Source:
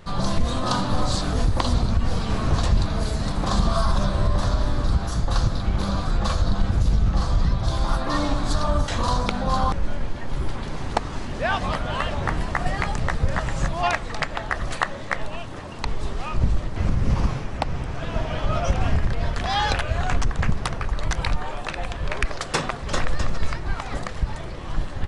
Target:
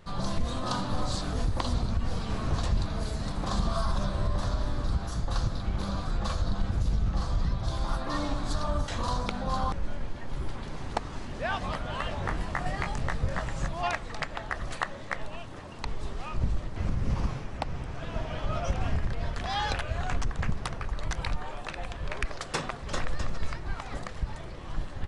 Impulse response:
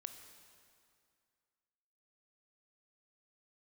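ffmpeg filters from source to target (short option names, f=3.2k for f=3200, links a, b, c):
-filter_complex "[0:a]asettb=1/sr,asplit=3[a][b][c];[a]atrim=end=12.024[d];[b]atrim=start=12.02:end=13.45,asetpts=PTS-STARTPTS,afade=t=in:d=0.004:c=qsin,afade=t=out:st=1.426:d=0.004:c=qsin,asplit=2[e][f];[f]adelay=22,volume=-6.5dB[g];[e][g]amix=inputs=2:normalize=0,atrim=end_sample=63063[h];[c]atrim=start=13.446[i];[d][h]acrossfade=d=0.004:c1=hsin:c2=qsin[j];[j][i]acrossfade=d=0.004:c1=qsin:c2=hsin,volume=-7.5dB"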